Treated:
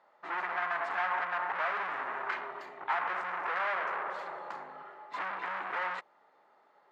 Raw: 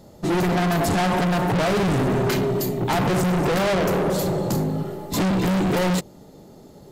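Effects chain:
flat-topped band-pass 1,400 Hz, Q 1.2
level −3 dB

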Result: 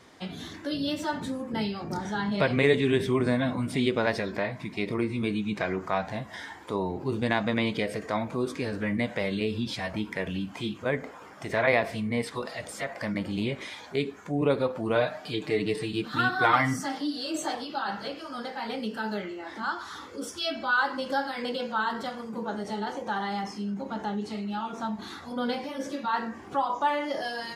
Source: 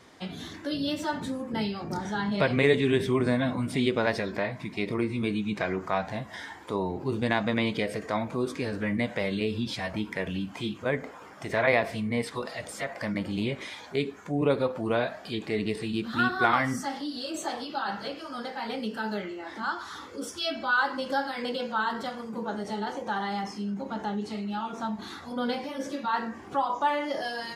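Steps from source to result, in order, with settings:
0:14.95–0:17.55: comb filter 6.6 ms, depth 70%

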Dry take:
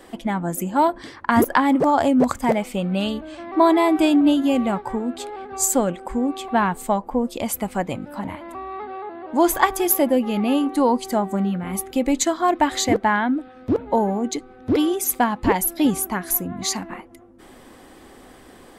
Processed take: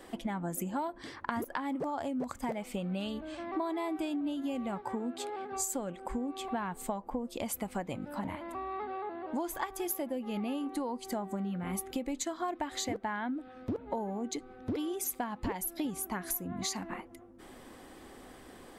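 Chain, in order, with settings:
0:04.82–0:05.56: high-pass filter 110 Hz 12 dB per octave
downward compressor 12 to 1, threshold −26 dBFS, peak gain reduction 16 dB
level −5.5 dB

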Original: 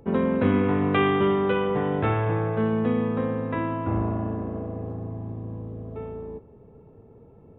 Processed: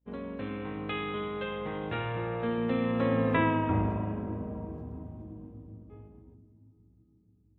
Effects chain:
source passing by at 0:03.35, 19 m/s, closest 5.5 metres
mains hum 60 Hz, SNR 23 dB
downward expander −46 dBFS
on a send at −13.5 dB: convolution reverb RT60 3.6 s, pre-delay 4 ms
on the sum: dynamic equaliser 2,600 Hz, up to +4 dB, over −55 dBFS, Q 1.1
in parallel at −2 dB: downward compressor, threshold −39 dBFS, peak gain reduction 14.5 dB
on the sum: high-shelf EQ 3,300 Hz +9 dB

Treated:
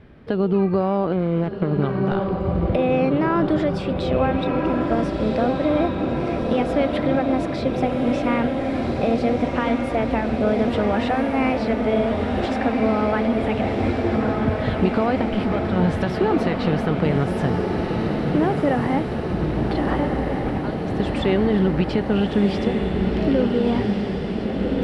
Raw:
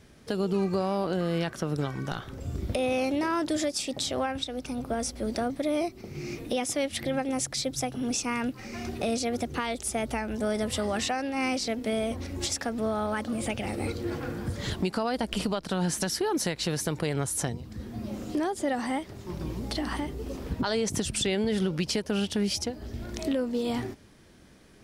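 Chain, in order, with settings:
0:01.12–0:01.82: running median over 41 samples
0:15.21–0:15.76: gain into a clipping stage and back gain 28.5 dB
0:20.45–0:21.00: compressor whose output falls as the input rises −38 dBFS, ratio −1
high-frequency loss of the air 460 metres
feedback delay with all-pass diffusion 1,440 ms, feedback 70%, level −3.5 dB
level +8.5 dB

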